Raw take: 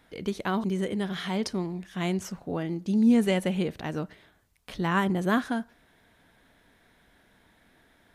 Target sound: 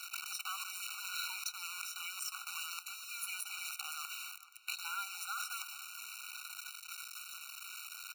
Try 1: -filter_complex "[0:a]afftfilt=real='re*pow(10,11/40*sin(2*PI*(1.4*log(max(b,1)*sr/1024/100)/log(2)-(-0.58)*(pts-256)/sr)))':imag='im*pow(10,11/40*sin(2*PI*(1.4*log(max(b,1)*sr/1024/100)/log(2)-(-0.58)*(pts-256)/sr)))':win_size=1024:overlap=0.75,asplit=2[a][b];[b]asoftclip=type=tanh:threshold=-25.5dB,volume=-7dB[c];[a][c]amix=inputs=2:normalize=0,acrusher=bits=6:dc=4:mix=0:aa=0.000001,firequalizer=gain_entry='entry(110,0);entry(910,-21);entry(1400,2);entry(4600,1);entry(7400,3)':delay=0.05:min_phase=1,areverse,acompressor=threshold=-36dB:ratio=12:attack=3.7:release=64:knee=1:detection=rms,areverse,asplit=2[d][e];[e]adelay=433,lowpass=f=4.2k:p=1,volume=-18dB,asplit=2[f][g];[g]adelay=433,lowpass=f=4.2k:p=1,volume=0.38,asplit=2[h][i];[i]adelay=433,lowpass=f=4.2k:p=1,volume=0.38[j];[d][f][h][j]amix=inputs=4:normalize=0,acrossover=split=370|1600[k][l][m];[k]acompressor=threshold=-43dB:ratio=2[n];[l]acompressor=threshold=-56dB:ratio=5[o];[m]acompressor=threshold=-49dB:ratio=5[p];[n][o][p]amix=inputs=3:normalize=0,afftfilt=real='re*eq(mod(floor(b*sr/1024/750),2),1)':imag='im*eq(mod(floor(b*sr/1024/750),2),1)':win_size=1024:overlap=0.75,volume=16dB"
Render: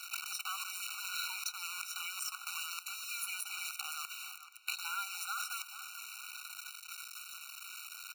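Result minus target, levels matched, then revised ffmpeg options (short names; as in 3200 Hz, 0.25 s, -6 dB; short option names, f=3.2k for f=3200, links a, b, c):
compressor: peak gain reduction -6 dB
-filter_complex "[0:a]afftfilt=real='re*pow(10,11/40*sin(2*PI*(1.4*log(max(b,1)*sr/1024/100)/log(2)-(-0.58)*(pts-256)/sr)))':imag='im*pow(10,11/40*sin(2*PI*(1.4*log(max(b,1)*sr/1024/100)/log(2)-(-0.58)*(pts-256)/sr)))':win_size=1024:overlap=0.75,asplit=2[a][b];[b]asoftclip=type=tanh:threshold=-25.5dB,volume=-7dB[c];[a][c]amix=inputs=2:normalize=0,acrusher=bits=6:dc=4:mix=0:aa=0.000001,firequalizer=gain_entry='entry(110,0);entry(910,-21);entry(1400,2);entry(4600,1);entry(7400,3)':delay=0.05:min_phase=1,areverse,acompressor=threshold=-42.5dB:ratio=12:attack=3.7:release=64:knee=1:detection=rms,areverse,asplit=2[d][e];[e]adelay=433,lowpass=f=4.2k:p=1,volume=-18dB,asplit=2[f][g];[g]adelay=433,lowpass=f=4.2k:p=1,volume=0.38,asplit=2[h][i];[i]adelay=433,lowpass=f=4.2k:p=1,volume=0.38[j];[d][f][h][j]amix=inputs=4:normalize=0,acrossover=split=370|1600[k][l][m];[k]acompressor=threshold=-43dB:ratio=2[n];[l]acompressor=threshold=-56dB:ratio=5[o];[m]acompressor=threshold=-49dB:ratio=5[p];[n][o][p]amix=inputs=3:normalize=0,afftfilt=real='re*eq(mod(floor(b*sr/1024/750),2),1)':imag='im*eq(mod(floor(b*sr/1024/750),2),1)':win_size=1024:overlap=0.75,volume=16dB"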